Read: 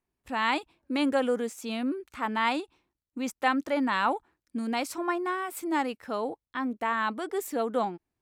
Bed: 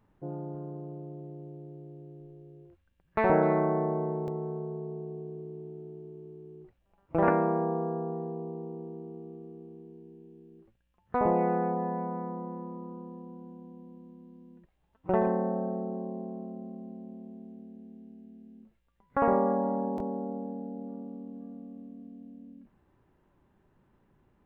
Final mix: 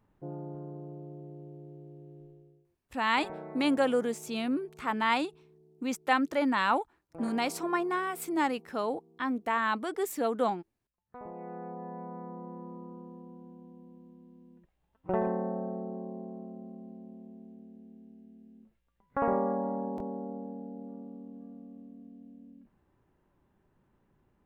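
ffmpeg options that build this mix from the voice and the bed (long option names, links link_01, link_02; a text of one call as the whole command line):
ffmpeg -i stem1.wav -i stem2.wav -filter_complex "[0:a]adelay=2650,volume=-0.5dB[link_01];[1:a]volume=13dB,afade=type=out:start_time=2.23:duration=0.43:silence=0.149624,afade=type=in:start_time=11.33:duration=1.39:silence=0.16788[link_02];[link_01][link_02]amix=inputs=2:normalize=0" out.wav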